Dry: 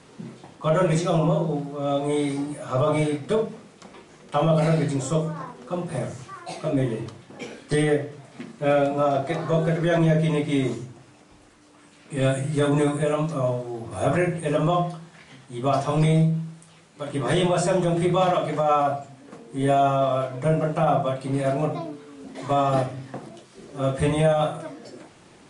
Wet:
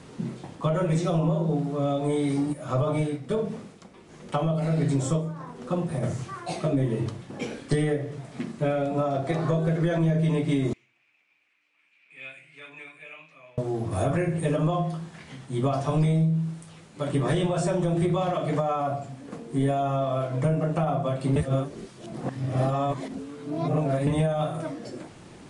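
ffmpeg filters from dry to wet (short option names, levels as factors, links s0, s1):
-filter_complex "[0:a]asplit=3[s0][s1][s2];[s0]afade=t=out:st=2.52:d=0.02[s3];[s1]tremolo=f=1.4:d=0.66,afade=t=in:st=2.52:d=0.02,afade=t=out:st=6.02:d=0.02[s4];[s2]afade=t=in:st=6.02:d=0.02[s5];[s3][s4][s5]amix=inputs=3:normalize=0,asettb=1/sr,asplit=3[s6][s7][s8];[s6]atrim=end=10.734[s9];[s7]atrim=start=10.73:end=13.58,asetpts=PTS-STARTPTS,afade=t=in:d=0.004:c=qsin,afade=t=out:st=2.846:d=0.004:c=qsin,bandpass=f=2400:t=q:w=8.6[s10];[s8]atrim=start=13.576[s11];[s9][s10]acrossfade=d=0.004:c1=hsin:c2=qsin[s12];[s12][s11]acrossfade=d=0.004:c1=qsin:c2=hsin,asplit=3[s13][s14][s15];[s13]atrim=end=21.362[s16];[s14]atrim=start=21.358:end=24.072,asetpts=PTS-STARTPTS,areverse[s17];[s15]atrim=start=24.068[s18];[s16][s17]acrossfade=d=0.004:c1=hsin:c2=hsin[s19];[s19][s18]acrossfade=d=0.004:c1=hsin:c2=hsin,acompressor=threshold=0.0501:ratio=6,lowshelf=f=290:g=7.5,volume=1.12"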